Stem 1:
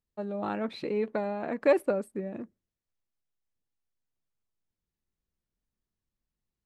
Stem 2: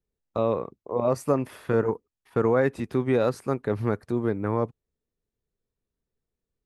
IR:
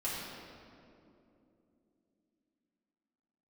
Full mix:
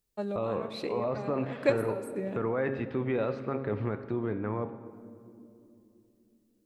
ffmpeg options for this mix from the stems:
-filter_complex "[0:a]volume=1.12,asplit=2[s0][s1];[s1]volume=0.0841[s2];[1:a]lowpass=f=3000:w=0.5412,lowpass=f=3000:w=1.3066,bandreject=f=135.6:t=h:w=4,bandreject=f=271.2:t=h:w=4,bandreject=f=406.8:t=h:w=4,bandreject=f=542.4:t=h:w=4,bandreject=f=678:t=h:w=4,bandreject=f=813.6:t=h:w=4,bandreject=f=949.2:t=h:w=4,bandreject=f=1084.8:t=h:w=4,bandreject=f=1220.4:t=h:w=4,bandreject=f=1356:t=h:w=4,bandreject=f=1491.6:t=h:w=4,bandreject=f=1627.2:t=h:w=4,bandreject=f=1762.8:t=h:w=4,bandreject=f=1898.4:t=h:w=4,bandreject=f=2034:t=h:w=4,bandreject=f=2169.6:t=h:w=4,bandreject=f=2305.2:t=h:w=4,bandreject=f=2440.8:t=h:w=4,bandreject=f=2576.4:t=h:w=4,bandreject=f=2712:t=h:w=4,bandreject=f=2847.6:t=h:w=4,bandreject=f=2983.2:t=h:w=4,bandreject=f=3118.8:t=h:w=4,bandreject=f=3254.4:t=h:w=4,bandreject=f=3390:t=h:w=4,bandreject=f=3525.6:t=h:w=4,bandreject=f=3661.2:t=h:w=4,bandreject=f=3796.8:t=h:w=4,bandreject=f=3932.4:t=h:w=4,bandreject=f=4068:t=h:w=4,alimiter=limit=0.119:level=0:latency=1:release=15,volume=0.631,asplit=3[s3][s4][s5];[s4]volume=0.188[s6];[s5]apad=whole_len=293566[s7];[s0][s7]sidechaincompress=threshold=0.00631:ratio=8:attack=25:release=277[s8];[2:a]atrim=start_sample=2205[s9];[s2][s6]amix=inputs=2:normalize=0[s10];[s10][s9]afir=irnorm=-1:irlink=0[s11];[s8][s3][s11]amix=inputs=3:normalize=0,highshelf=f=3700:g=12"

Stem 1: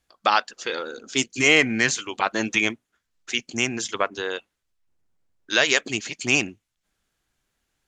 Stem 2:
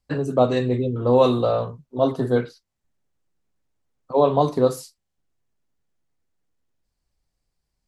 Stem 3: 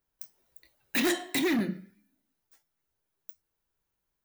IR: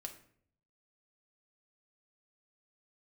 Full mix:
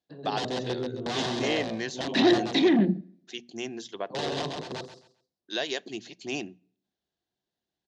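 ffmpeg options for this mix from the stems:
-filter_complex "[0:a]equalizer=f=340:w=1.5:g=3,bandreject=f=60:t=h:w=6,bandreject=f=120:t=h:w=6,bandreject=f=180:t=h:w=6,bandreject=f=240:t=h:w=6,volume=0.224,asplit=3[s0][s1][s2];[s1]volume=0.168[s3];[1:a]aeval=exprs='(mod(4.73*val(0)+1,2)-1)/4.73':c=same,volume=0.211,asplit=3[s4][s5][s6];[s5]volume=0.2[s7];[s6]volume=0.708[s8];[2:a]afwtdn=0.0126,adelay=1200,volume=1.19,asplit=2[s9][s10];[s10]volume=0.398[s11];[s2]apad=whole_len=347408[s12];[s4][s12]sidechaingate=range=0.282:threshold=0.00112:ratio=16:detection=peak[s13];[3:a]atrim=start_sample=2205[s14];[s3][s7][s11]amix=inputs=3:normalize=0[s15];[s15][s14]afir=irnorm=-1:irlink=0[s16];[s8]aecho=0:1:133|266|399|532:1|0.24|0.0576|0.0138[s17];[s0][s13][s9][s16][s17]amix=inputs=5:normalize=0,highpass=100,equalizer=f=190:t=q:w=4:g=6,equalizer=f=360:t=q:w=4:g=5,equalizer=f=700:t=q:w=4:g=7,equalizer=f=1300:t=q:w=4:g=-10,equalizer=f=2300:t=q:w=4:g=-8,equalizer=f=3800:t=q:w=4:g=5,lowpass=f=5900:w=0.5412,lowpass=f=5900:w=1.3066"

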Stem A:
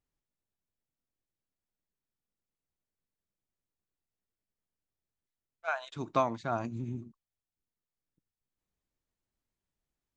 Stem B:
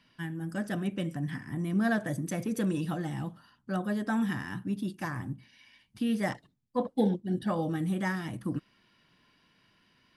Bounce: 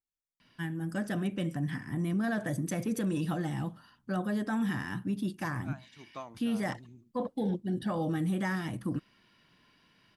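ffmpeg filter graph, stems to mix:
-filter_complex "[0:a]highshelf=f=4400:g=9,volume=0.168[s0];[1:a]adelay=400,volume=1.12[s1];[s0][s1]amix=inputs=2:normalize=0,alimiter=limit=0.0631:level=0:latency=1:release=16"

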